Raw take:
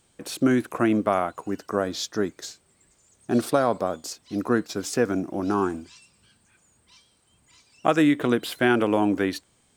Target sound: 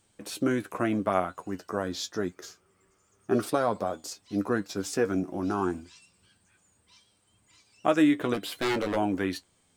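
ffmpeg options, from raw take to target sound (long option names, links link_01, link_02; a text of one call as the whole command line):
ffmpeg -i in.wav -filter_complex "[0:a]asettb=1/sr,asplit=3[link_01][link_02][link_03];[link_01]atrim=end=2.344[link_04];[link_02]atrim=start=2.34:end=3.43,asetpts=PTS-STARTPTS,afade=type=in:duration=0.004:curve=qsin,afade=type=out:start_time=1.086:duration=0.004:curve=qsin,equalizer=frequency=400:width_type=o:width=0.33:gain=7,equalizer=frequency=1250:width_type=o:width=0.33:gain=11,equalizer=frequency=4000:width_type=o:width=0.33:gain=-10,equalizer=frequency=8000:width_type=o:width=0.33:gain=-10[link_05];[link_03]atrim=start=3.426[link_06];[link_04][link_05]acrossfade=duration=0.004:curve1=hsin:curve2=qsin[link_07];[link_07][link_06]acrossfade=duration=0.004:curve1=qsin:curve2=hsin,asplit=3[link_08][link_09][link_10];[link_08]afade=type=out:start_time=8.33:duration=0.02[link_11];[link_09]aeval=exprs='0.133*(abs(mod(val(0)/0.133+3,4)-2)-1)':channel_layout=same,afade=type=in:start_time=8.33:duration=0.02,afade=type=out:start_time=8.95:duration=0.02[link_12];[link_10]afade=type=in:start_time=8.95:duration=0.02[link_13];[link_11][link_12][link_13]amix=inputs=3:normalize=0,flanger=delay=9.6:depth=1.7:regen=40:speed=0.26:shape=sinusoidal" out.wav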